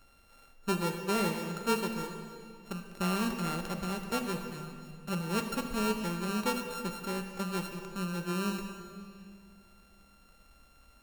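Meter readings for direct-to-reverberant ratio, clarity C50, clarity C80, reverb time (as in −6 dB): 5.0 dB, 6.0 dB, 7.0 dB, 2.3 s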